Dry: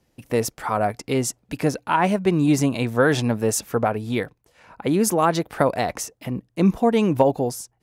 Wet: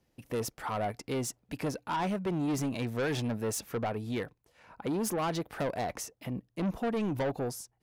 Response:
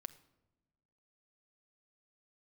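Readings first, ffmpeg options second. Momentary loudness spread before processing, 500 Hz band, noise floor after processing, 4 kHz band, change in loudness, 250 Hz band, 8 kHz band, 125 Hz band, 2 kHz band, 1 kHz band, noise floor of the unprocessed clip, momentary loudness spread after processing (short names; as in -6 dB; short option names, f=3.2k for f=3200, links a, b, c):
9 LU, -12.5 dB, -76 dBFS, -9.5 dB, -12.0 dB, -11.5 dB, -11.0 dB, -11.0 dB, -12.0 dB, -12.0 dB, -69 dBFS, 7 LU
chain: -af "asoftclip=type=tanh:threshold=-20dB,equalizer=f=7.9k:w=1.5:g=-2.5,volume=-7dB"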